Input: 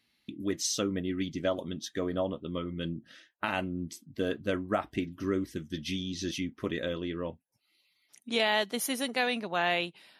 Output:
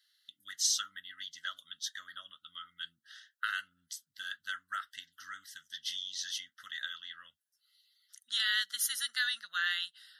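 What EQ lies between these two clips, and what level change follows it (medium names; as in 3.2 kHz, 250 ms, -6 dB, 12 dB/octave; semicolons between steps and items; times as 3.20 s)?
elliptic high-pass 1.4 kHz, stop band 40 dB; Butterworth band-stop 2.4 kHz, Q 2.3; band-stop 2.2 kHz, Q 22; +3.0 dB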